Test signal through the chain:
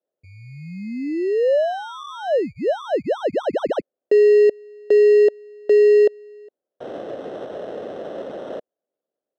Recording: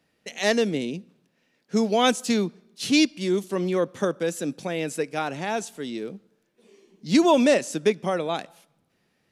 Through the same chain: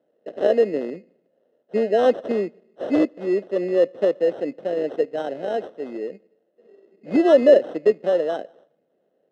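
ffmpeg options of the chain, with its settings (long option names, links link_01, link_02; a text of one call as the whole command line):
ffmpeg -i in.wav -af "acrusher=samples=19:mix=1:aa=0.000001,highpass=370,lowpass=2900,lowshelf=frequency=750:width_type=q:width=3:gain=8.5,volume=-5dB" out.wav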